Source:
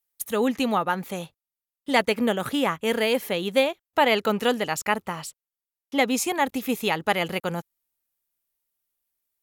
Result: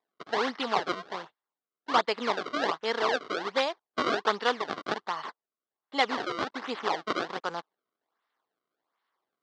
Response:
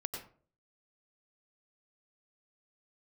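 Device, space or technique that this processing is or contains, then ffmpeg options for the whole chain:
circuit-bent sampling toy: -af "acrusher=samples=29:mix=1:aa=0.000001:lfo=1:lforange=46.4:lforate=1.3,highpass=510,equalizer=frequency=550:width_type=q:width=4:gain=-6,equalizer=frequency=1100:width_type=q:width=4:gain=5,equalizer=frequency=2500:width_type=q:width=4:gain=-8,lowpass=frequency=4600:width=0.5412,lowpass=frequency=4600:width=1.3066"

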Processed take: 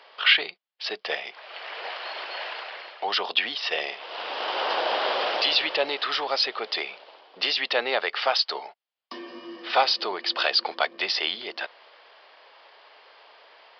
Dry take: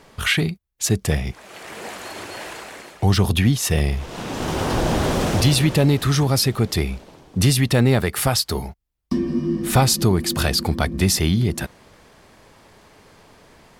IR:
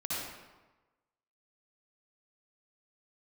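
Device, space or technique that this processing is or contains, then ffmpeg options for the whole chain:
musical greeting card: -af "aresample=11025,aresample=44100,highpass=frequency=540:width=0.5412,highpass=frequency=540:width=1.3066,equalizer=frequency=3000:width_type=o:width=0.34:gain=5.5"

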